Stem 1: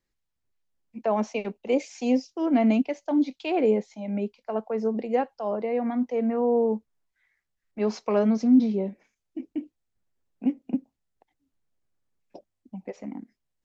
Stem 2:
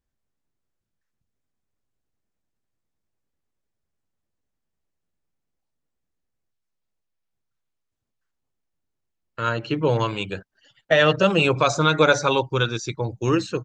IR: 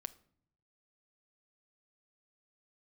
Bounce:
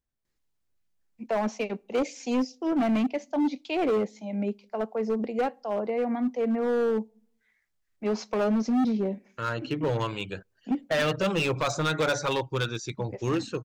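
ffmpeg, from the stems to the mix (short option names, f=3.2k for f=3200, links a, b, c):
-filter_complex "[0:a]highshelf=f=3.9k:g=3,adelay=250,volume=-2.5dB,asplit=2[a][b];[b]volume=-8.5dB[c];[1:a]volume=-6dB,asplit=3[d][e][f];[e]volume=-23dB[g];[f]apad=whole_len=612611[h];[a][h]sidechaincompress=threshold=-33dB:ratio=8:attack=6:release=289[i];[2:a]atrim=start_sample=2205[j];[c][g]amix=inputs=2:normalize=0[k];[k][j]afir=irnorm=-1:irlink=0[l];[i][d][l]amix=inputs=3:normalize=0,volume=21dB,asoftclip=hard,volume=-21dB"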